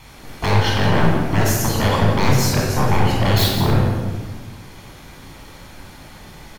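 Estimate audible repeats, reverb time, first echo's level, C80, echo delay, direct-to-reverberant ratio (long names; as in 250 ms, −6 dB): 1, 1.3 s, −10.5 dB, 3.0 dB, 172 ms, −2.0 dB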